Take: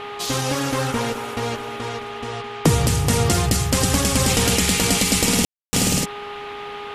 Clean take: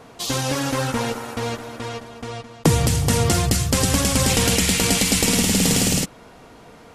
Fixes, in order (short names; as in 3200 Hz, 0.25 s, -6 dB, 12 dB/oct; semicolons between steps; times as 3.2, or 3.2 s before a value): de-hum 410.6 Hz, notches 3; room tone fill 5.45–5.73; noise print and reduce 12 dB